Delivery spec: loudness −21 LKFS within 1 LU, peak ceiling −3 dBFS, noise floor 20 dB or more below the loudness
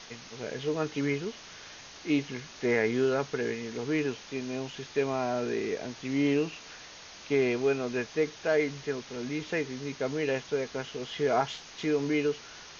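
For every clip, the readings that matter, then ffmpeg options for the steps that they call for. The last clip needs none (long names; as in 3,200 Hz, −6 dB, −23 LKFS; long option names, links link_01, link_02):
background noise floor −48 dBFS; target noise floor −51 dBFS; integrated loudness −31.0 LKFS; sample peak −13.5 dBFS; target loudness −21.0 LKFS
→ -af "afftdn=noise_reduction=6:noise_floor=-48"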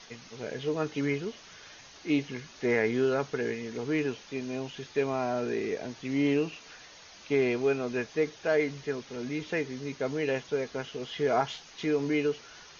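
background noise floor −52 dBFS; integrated loudness −31.0 LKFS; sample peak −13.5 dBFS; target loudness −21.0 LKFS
→ -af "volume=10dB"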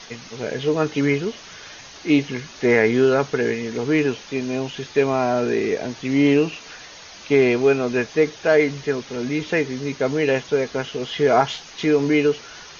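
integrated loudness −21.0 LKFS; sample peak −3.5 dBFS; background noise floor −42 dBFS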